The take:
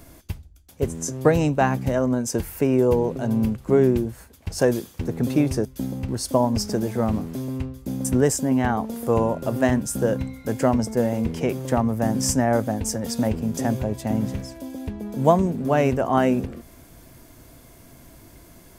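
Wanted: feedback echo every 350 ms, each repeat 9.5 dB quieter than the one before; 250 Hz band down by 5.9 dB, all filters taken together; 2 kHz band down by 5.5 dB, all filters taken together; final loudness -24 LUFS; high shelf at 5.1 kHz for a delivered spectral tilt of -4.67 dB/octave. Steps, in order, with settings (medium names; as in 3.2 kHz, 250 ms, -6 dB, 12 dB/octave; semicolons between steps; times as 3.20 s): peaking EQ 250 Hz -7 dB; peaking EQ 2 kHz -8.5 dB; treble shelf 5.1 kHz +9 dB; feedback delay 350 ms, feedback 33%, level -9.5 dB; trim +0.5 dB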